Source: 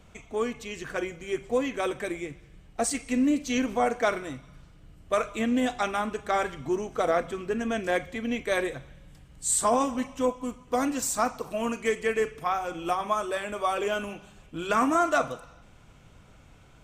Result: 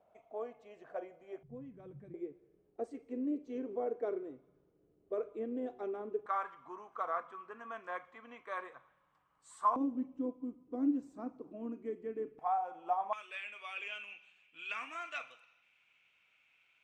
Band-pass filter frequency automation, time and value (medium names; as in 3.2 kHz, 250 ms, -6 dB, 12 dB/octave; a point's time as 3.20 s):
band-pass filter, Q 5.6
660 Hz
from 1.43 s 140 Hz
from 2.14 s 400 Hz
from 6.26 s 1.1 kHz
from 9.76 s 300 Hz
from 12.39 s 800 Hz
from 13.13 s 2.5 kHz